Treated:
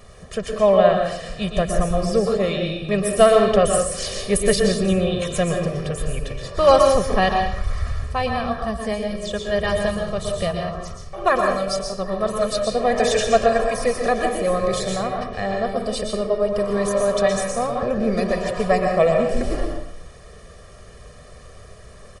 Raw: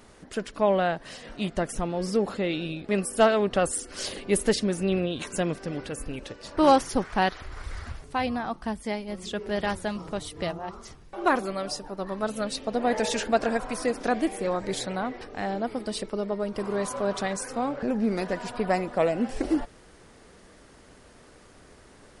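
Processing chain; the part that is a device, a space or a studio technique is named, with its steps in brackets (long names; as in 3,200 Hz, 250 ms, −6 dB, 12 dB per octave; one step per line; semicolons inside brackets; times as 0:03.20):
low-shelf EQ 190 Hz +5.5 dB
microphone above a desk (comb filter 1.7 ms, depth 88%; convolution reverb RT60 0.60 s, pre-delay 112 ms, DRR 2.5 dB)
level +2 dB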